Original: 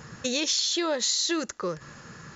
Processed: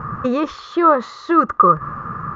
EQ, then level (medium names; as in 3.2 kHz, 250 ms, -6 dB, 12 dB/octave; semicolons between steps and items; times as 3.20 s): resonant low-pass 1.2 kHz, resonance Q 14; bass shelf 240 Hz +10.5 dB; +7.0 dB